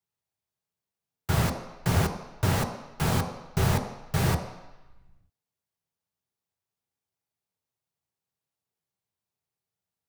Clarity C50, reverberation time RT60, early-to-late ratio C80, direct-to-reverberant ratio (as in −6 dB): 8.0 dB, 1.0 s, 9.5 dB, 3.0 dB